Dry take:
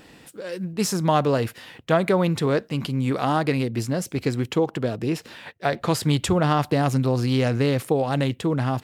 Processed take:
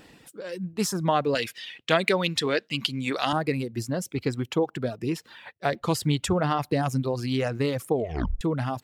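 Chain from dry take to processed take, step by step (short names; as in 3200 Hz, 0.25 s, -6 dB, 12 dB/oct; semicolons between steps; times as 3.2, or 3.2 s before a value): 1.35–3.33 weighting filter D; 7.95 tape stop 0.46 s; reverb removal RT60 1.2 s; gain -2.5 dB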